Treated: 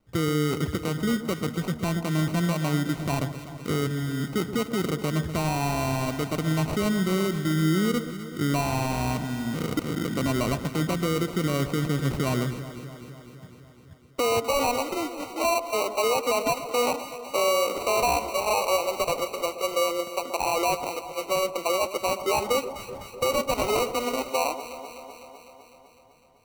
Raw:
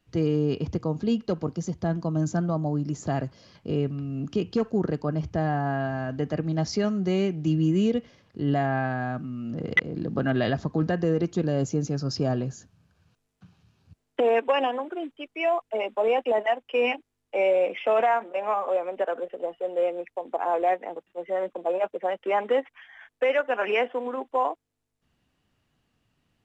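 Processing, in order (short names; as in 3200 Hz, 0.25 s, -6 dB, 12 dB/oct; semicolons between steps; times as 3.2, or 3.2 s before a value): sample-and-hold 26×; limiter -20.5 dBFS, peak gain reduction 9.5 dB; echo with dull and thin repeats by turns 0.126 s, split 1100 Hz, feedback 81%, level -11 dB; gain +2.5 dB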